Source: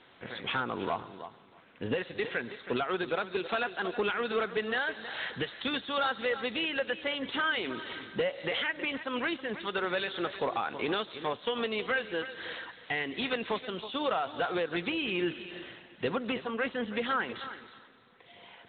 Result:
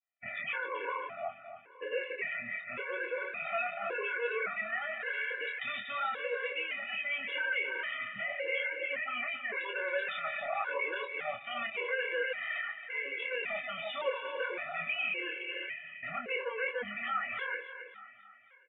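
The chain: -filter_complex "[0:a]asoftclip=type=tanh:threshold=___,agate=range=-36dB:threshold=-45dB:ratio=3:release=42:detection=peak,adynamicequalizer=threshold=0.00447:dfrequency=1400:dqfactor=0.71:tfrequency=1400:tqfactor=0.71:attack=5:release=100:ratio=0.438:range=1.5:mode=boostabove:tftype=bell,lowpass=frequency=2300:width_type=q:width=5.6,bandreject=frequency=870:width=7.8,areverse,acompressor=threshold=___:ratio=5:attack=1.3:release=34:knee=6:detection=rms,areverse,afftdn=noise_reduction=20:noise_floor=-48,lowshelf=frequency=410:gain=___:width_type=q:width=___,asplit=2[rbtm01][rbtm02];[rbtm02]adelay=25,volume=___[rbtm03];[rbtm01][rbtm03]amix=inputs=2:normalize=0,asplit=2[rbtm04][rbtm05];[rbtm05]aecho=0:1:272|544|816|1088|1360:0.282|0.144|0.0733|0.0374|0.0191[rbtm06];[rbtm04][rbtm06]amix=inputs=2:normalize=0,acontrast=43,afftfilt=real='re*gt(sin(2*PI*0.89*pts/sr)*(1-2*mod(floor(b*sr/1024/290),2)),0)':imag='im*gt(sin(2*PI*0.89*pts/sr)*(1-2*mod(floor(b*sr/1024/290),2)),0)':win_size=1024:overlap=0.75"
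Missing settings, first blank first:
-24.5dB, -37dB, -9, 3, -5dB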